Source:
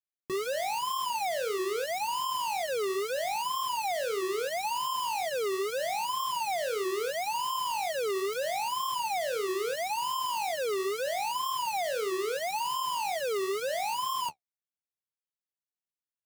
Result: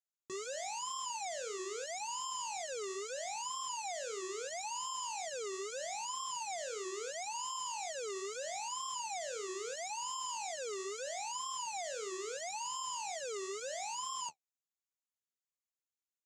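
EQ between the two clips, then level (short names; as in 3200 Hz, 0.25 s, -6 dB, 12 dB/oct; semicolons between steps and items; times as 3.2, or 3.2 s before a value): ladder low-pass 7400 Hz, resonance 75%; low shelf 110 Hz -10 dB; +1.5 dB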